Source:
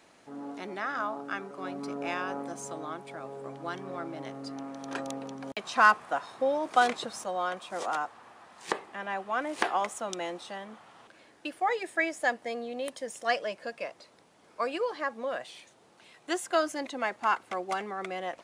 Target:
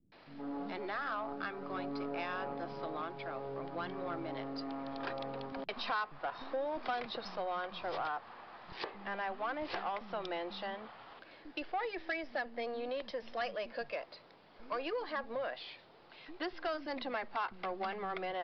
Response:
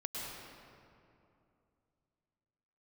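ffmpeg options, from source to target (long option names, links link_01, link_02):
-filter_complex "[0:a]aeval=exprs='if(lt(val(0),0),0.708*val(0),val(0))':channel_layout=same,acompressor=threshold=-36dB:ratio=3,acrossover=split=230[link_01][link_02];[link_02]adelay=120[link_03];[link_01][link_03]amix=inputs=2:normalize=0,aresample=11025,asoftclip=type=tanh:threshold=-31.5dB,aresample=44100,volume=2.5dB"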